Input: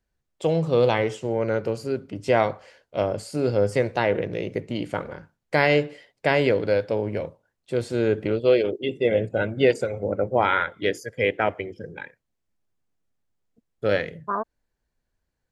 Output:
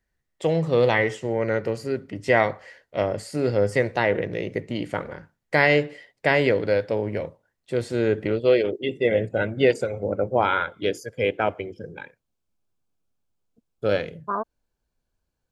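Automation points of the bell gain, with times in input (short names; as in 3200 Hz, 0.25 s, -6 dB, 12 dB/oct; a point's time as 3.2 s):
bell 1900 Hz 0.21 oct
3.49 s +13.5 dB
3.9 s +6.5 dB
9.47 s +6.5 dB
9.83 s -2.5 dB
10.52 s -12 dB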